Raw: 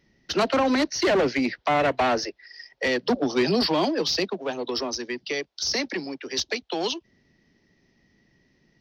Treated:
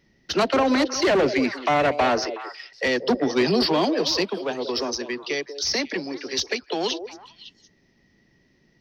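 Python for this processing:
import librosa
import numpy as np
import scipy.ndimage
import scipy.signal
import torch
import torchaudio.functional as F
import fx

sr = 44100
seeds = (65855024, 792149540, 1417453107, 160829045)

y = fx.echo_stepped(x, sr, ms=185, hz=460.0, octaves=1.4, feedback_pct=70, wet_db=-7.5)
y = y * librosa.db_to_amplitude(1.5)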